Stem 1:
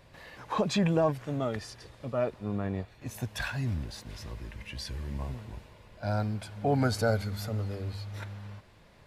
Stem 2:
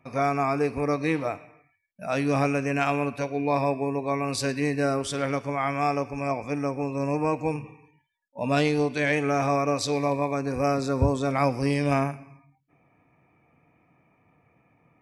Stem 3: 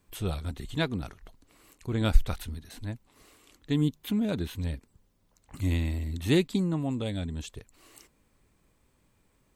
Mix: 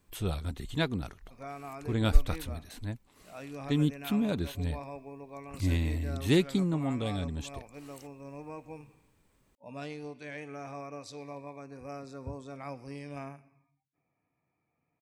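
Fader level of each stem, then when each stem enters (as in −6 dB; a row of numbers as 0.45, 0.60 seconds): muted, −18.0 dB, −1.0 dB; muted, 1.25 s, 0.00 s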